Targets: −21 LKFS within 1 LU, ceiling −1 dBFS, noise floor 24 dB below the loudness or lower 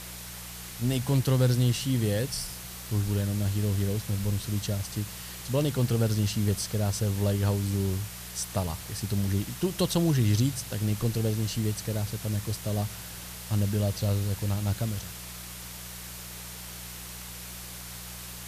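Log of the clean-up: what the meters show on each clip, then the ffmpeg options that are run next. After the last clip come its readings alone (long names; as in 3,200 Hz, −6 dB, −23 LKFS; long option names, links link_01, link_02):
mains hum 60 Hz; hum harmonics up to 180 Hz; level of the hum −45 dBFS; background noise floor −41 dBFS; target noise floor −54 dBFS; integrated loudness −29.5 LKFS; sample peak −12.5 dBFS; target loudness −21.0 LKFS
→ -af "bandreject=frequency=60:width_type=h:width=4,bandreject=frequency=120:width_type=h:width=4,bandreject=frequency=180:width_type=h:width=4"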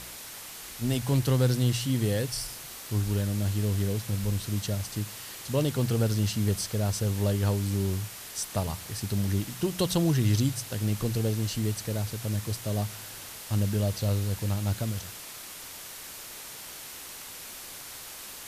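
mains hum none found; background noise floor −43 dBFS; target noise floor −54 dBFS
→ -af "afftdn=noise_reduction=11:noise_floor=-43"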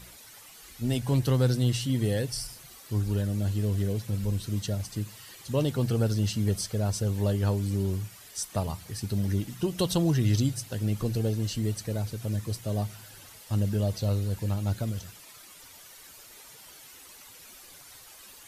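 background noise floor −50 dBFS; target noise floor −53 dBFS
→ -af "afftdn=noise_reduction=6:noise_floor=-50"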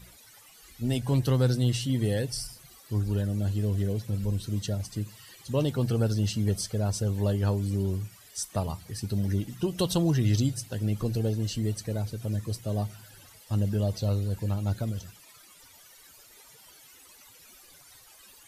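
background noise floor −54 dBFS; integrated loudness −29.0 LKFS; sample peak −13.5 dBFS; target loudness −21.0 LKFS
→ -af "volume=8dB"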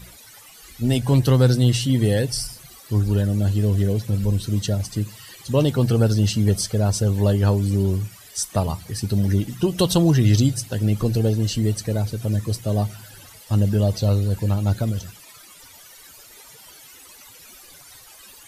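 integrated loudness −21.0 LKFS; sample peak −5.5 dBFS; background noise floor −46 dBFS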